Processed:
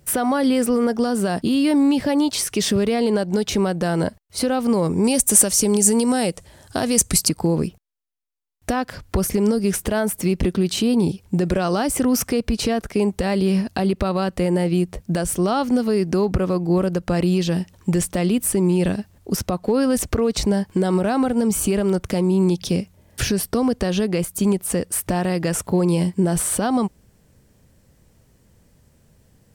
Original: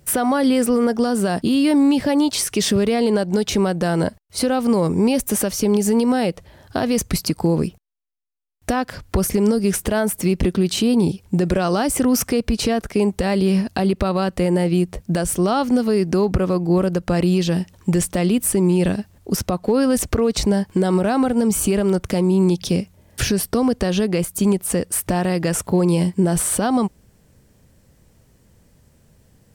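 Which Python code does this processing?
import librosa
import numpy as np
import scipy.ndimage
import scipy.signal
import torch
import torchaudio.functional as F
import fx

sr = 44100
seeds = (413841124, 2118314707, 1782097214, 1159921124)

y = fx.peak_eq(x, sr, hz=8400.0, db=14.5, octaves=1.1, at=(5.04, 7.29))
y = y * 10.0 ** (-1.5 / 20.0)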